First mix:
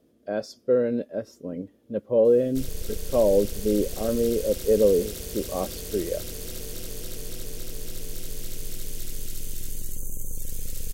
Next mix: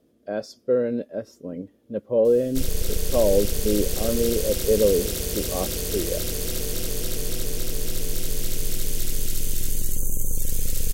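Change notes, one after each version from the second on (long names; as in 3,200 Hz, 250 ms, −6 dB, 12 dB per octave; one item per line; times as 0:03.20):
background +8.0 dB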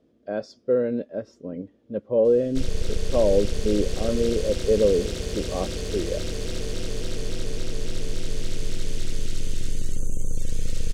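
master: add high-frequency loss of the air 100 metres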